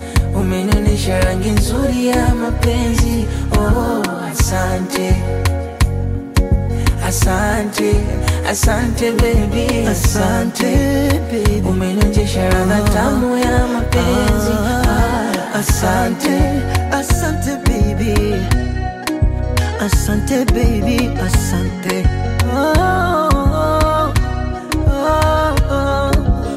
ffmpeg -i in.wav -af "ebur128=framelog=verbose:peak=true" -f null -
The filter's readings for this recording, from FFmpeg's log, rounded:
Integrated loudness:
  I:         -15.9 LUFS
  Threshold: -25.9 LUFS
Loudness range:
  LRA:         2.1 LU
  Threshold: -35.9 LUFS
  LRA low:   -17.1 LUFS
  LRA high:  -14.9 LUFS
True peak:
  Peak:       -3.0 dBFS